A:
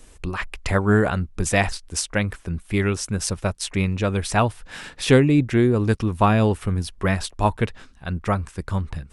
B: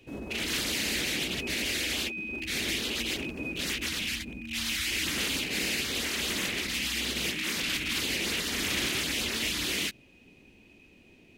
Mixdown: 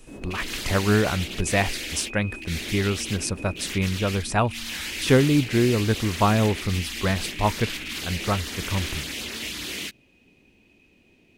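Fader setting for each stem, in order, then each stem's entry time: -2.5, -2.0 dB; 0.00, 0.00 s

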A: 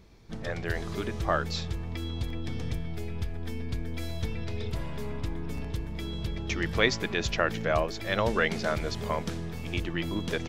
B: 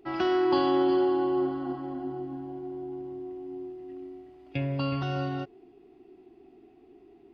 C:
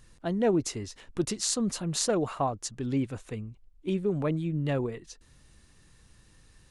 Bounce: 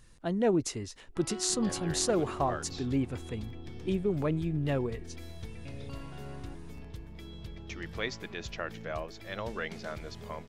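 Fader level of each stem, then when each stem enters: -10.5, -16.5, -1.5 dB; 1.20, 1.10, 0.00 s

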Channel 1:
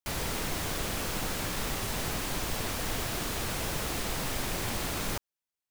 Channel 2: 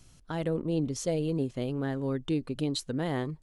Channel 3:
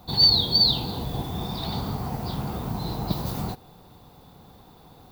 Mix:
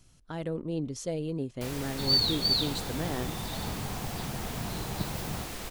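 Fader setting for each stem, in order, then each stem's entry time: -6.0, -3.5, -7.5 dB; 1.55, 0.00, 1.90 s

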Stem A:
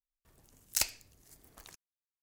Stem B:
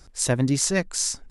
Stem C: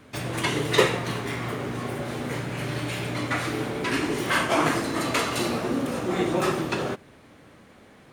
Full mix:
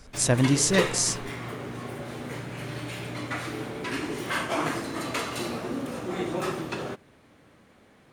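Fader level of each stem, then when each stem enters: off, 0.0 dB, -5.5 dB; off, 0.00 s, 0.00 s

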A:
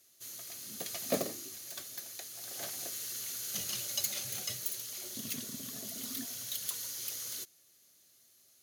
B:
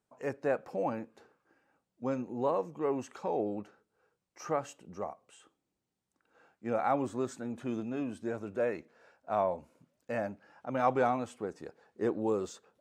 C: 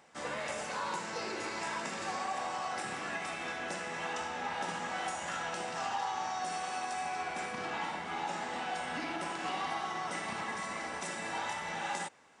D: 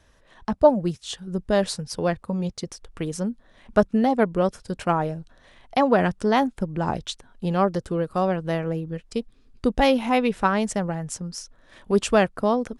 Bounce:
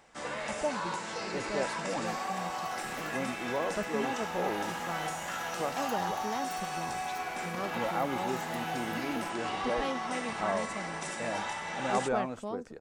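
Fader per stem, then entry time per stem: -15.5, -3.0, +1.0, -17.0 dB; 1.85, 1.10, 0.00, 0.00 s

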